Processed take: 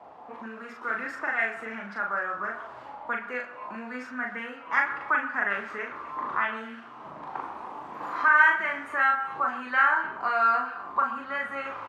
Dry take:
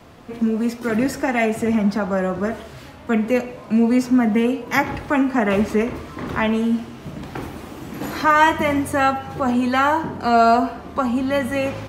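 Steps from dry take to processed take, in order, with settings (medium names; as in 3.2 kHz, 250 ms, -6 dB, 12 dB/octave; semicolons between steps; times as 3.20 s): in parallel at +1.5 dB: compression, threshold -31 dBFS, peak gain reduction 19.5 dB; on the sum: auto-wah 780–1600 Hz, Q 4.2, up, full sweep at -13.5 dBFS; doubling 40 ms -3 dB; repeats whose band climbs or falls 127 ms, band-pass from 1.2 kHz, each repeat 1.4 oct, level -11.5 dB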